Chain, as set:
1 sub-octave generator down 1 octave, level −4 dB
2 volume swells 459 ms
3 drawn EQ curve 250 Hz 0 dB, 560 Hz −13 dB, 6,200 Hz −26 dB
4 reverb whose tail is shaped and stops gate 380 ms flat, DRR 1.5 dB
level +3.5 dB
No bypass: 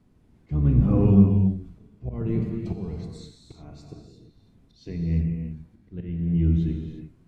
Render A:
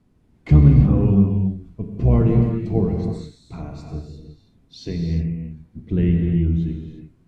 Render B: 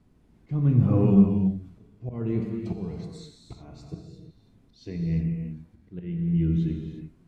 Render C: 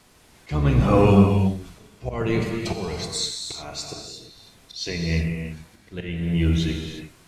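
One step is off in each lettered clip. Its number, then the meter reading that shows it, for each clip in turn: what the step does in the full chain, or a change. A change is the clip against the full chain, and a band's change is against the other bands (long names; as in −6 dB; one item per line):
2, change in crest factor −2.0 dB
1, 125 Hz band −2.0 dB
3, 4 kHz band +19.0 dB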